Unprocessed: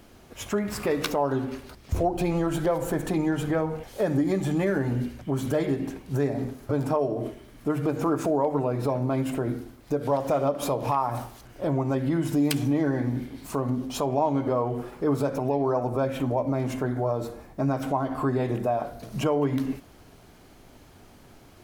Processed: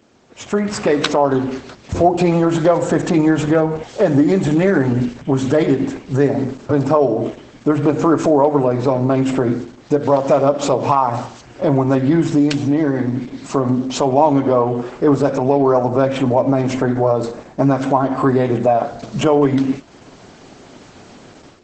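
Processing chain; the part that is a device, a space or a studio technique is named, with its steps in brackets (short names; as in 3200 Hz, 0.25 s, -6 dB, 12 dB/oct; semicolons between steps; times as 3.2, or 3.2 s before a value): video call (HPF 130 Hz 12 dB/oct; AGC gain up to 14 dB; Opus 12 kbps 48000 Hz)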